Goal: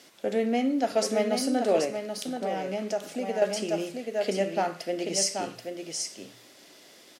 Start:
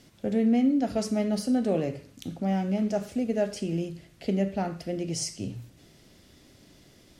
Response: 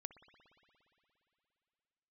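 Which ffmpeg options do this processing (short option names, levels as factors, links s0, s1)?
-filter_complex "[0:a]highpass=460,asplit=2[s0][s1];[s1]aecho=0:1:781:0.501[s2];[s0][s2]amix=inputs=2:normalize=0,asettb=1/sr,asplit=3[s3][s4][s5];[s3]atrim=end=1.844[s6];[s4]atrim=start=1.84:end=3.42,asetpts=PTS-STARTPTS,afade=t=in:d=0.004:c=qsin,afade=t=out:st=1.576:d=0.004:c=qsin,acompressor=threshold=0.02:ratio=2.5[s7];[s5]atrim=start=3.416[s8];[s6][s7]acrossfade=d=0.004:c1=hsin:c2=qsin[s9];[s9][s8]acrossfade=d=0.004:c1=qsin:c2=hsin,volume=2"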